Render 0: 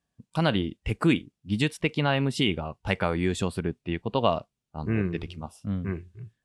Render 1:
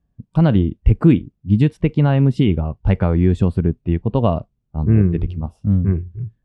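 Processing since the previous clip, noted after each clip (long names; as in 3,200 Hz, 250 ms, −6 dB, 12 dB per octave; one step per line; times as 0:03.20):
spectral tilt −4.5 dB per octave
level +1 dB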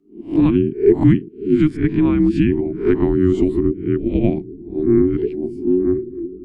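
peak hold with a rise ahead of every peak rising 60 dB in 0.33 s
bucket-brigade delay 548 ms, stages 2,048, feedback 68%, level −19 dB
frequency shifter −460 Hz
level −1 dB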